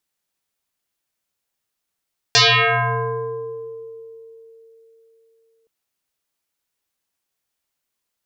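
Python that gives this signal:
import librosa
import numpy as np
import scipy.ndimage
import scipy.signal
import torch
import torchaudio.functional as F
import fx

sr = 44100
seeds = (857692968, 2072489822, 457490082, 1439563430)

y = fx.fm2(sr, length_s=3.32, level_db=-9.0, carrier_hz=453.0, ratio=1.27, index=10.0, index_s=2.24, decay_s=3.81, shape='exponential')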